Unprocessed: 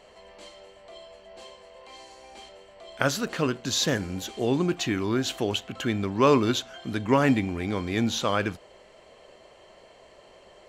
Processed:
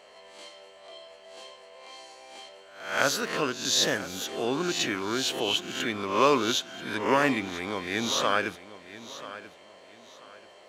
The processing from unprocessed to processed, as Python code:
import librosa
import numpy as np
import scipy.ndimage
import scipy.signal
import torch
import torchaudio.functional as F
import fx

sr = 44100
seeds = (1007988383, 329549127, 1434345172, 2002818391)

y = fx.spec_swells(x, sr, rise_s=0.56)
y = fx.highpass(y, sr, hz=520.0, slope=6)
y = fx.notch(y, sr, hz=7400.0, q=22.0)
y = fx.echo_feedback(y, sr, ms=987, feedback_pct=28, wet_db=-15.5)